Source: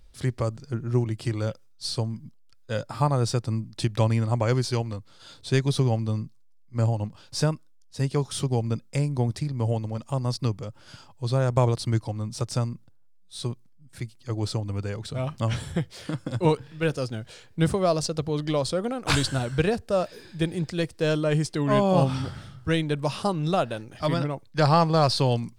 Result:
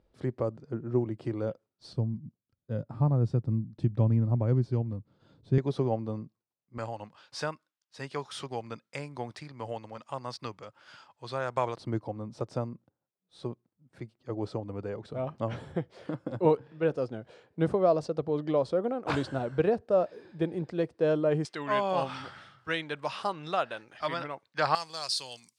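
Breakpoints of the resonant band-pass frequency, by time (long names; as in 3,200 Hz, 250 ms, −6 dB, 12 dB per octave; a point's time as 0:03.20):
resonant band-pass, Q 0.78
430 Hz
from 0:01.93 170 Hz
from 0:05.58 520 Hz
from 0:06.78 1,500 Hz
from 0:11.77 510 Hz
from 0:21.45 1,600 Hz
from 0:24.75 7,900 Hz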